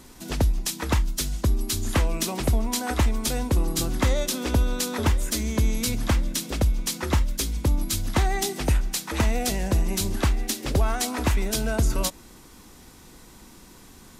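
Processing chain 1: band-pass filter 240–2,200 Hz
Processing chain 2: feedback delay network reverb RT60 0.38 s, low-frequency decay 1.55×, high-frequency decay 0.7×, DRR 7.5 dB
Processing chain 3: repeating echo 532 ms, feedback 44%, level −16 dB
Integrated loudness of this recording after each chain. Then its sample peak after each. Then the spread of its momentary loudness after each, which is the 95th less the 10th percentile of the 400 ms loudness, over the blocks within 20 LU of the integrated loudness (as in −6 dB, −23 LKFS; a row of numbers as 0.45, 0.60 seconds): −32.5, −24.5, −25.5 LKFS; −11.5, −8.0, −11.0 dBFS; 6, 3, 4 LU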